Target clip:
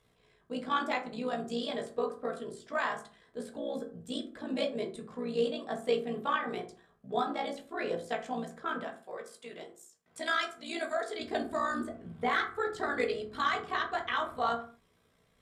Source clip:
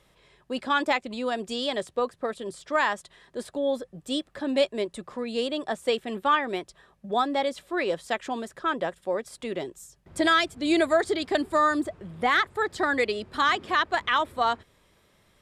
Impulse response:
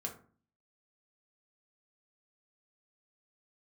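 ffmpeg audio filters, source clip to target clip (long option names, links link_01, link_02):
-filter_complex "[0:a]asettb=1/sr,asplit=3[link_01][link_02][link_03];[link_01]atrim=end=8.824[link_04];[link_02]atrim=start=8.82:end=11.19,asetpts=PTS-STARTPTS,afade=type=in:duration=0.004:curve=qsin,afade=type=out:start_time=2.366:duration=0.004:curve=qsin,highpass=frequency=970:poles=1[link_05];[link_03]atrim=start=11.186[link_06];[link_04][link_05]acrossfade=duration=0.004:curve1=hsin:curve2=qsin[link_07];[link_07][link_06]acrossfade=duration=0.004:curve1=qsin:curve2=hsin,tremolo=f=60:d=0.824[link_08];[1:a]atrim=start_sample=2205,afade=type=out:start_time=0.31:duration=0.01,atrim=end_sample=14112[link_09];[link_08][link_09]afir=irnorm=-1:irlink=0,volume=-3.5dB"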